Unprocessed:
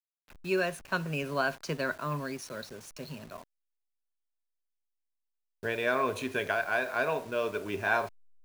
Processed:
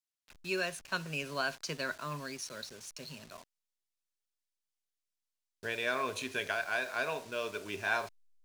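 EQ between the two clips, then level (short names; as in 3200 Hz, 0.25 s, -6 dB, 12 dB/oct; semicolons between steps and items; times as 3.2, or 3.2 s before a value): bell 5600 Hz +11 dB 2.8 oct; -7.5 dB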